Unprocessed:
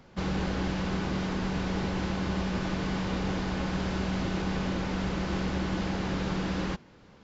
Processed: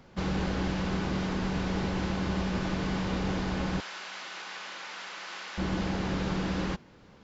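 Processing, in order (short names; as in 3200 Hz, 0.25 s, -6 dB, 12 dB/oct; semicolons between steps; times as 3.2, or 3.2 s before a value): 3.8–5.58 HPF 1200 Hz 12 dB/oct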